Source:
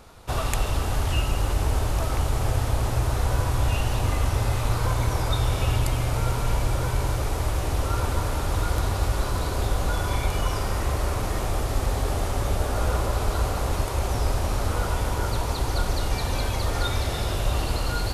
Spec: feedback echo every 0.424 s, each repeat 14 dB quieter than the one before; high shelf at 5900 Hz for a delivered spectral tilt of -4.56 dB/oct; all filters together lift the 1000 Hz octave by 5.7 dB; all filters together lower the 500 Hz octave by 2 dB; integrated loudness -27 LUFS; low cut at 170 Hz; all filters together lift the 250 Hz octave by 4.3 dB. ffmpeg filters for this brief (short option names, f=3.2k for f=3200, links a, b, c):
-af "highpass=170,equalizer=f=250:t=o:g=9,equalizer=f=500:t=o:g=-8,equalizer=f=1k:t=o:g=9,highshelf=f=5.9k:g=-4.5,aecho=1:1:424|848:0.2|0.0399,volume=0.5dB"